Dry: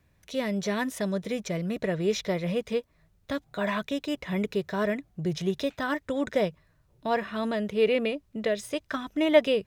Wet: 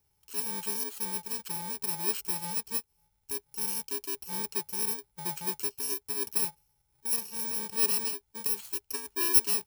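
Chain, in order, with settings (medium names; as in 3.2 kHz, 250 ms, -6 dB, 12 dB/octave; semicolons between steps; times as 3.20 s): bit-reversed sample order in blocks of 64 samples; amplifier tone stack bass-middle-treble 5-5-5; small resonant body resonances 410/850 Hz, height 17 dB, ringing for 60 ms; 8.78–9.33 s: dynamic bell 1.4 kHz, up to +8 dB, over -58 dBFS, Q 0.89; trim +2.5 dB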